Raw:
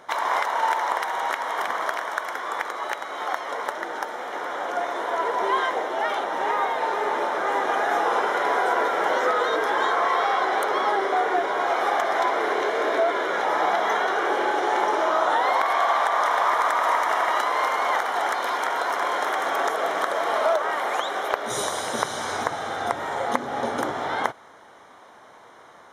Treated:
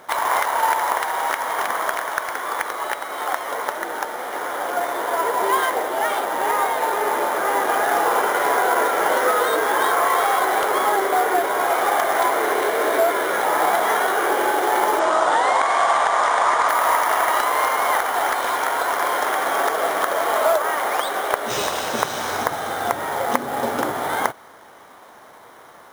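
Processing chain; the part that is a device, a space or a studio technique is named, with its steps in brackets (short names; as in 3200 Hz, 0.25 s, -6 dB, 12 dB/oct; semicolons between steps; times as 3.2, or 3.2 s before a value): early companding sampler (sample-rate reducer 12000 Hz, jitter 0%; companded quantiser 6-bit); 14.99–16.69 steep low-pass 9400 Hz 72 dB/oct; gain +3.5 dB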